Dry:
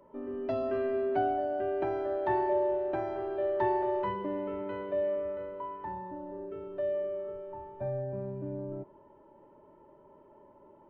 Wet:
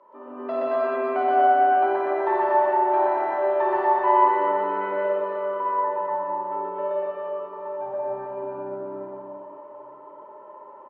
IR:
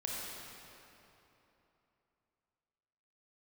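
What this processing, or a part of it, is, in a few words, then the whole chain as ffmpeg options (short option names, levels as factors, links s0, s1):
station announcement: -filter_complex "[0:a]highpass=470,lowpass=3500,equalizer=f=1100:t=o:w=0.58:g=10.5,aecho=1:1:125.4|239.1:1|0.794[s0];[1:a]atrim=start_sample=2205[s1];[s0][s1]afir=irnorm=-1:irlink=0,volume=1.58"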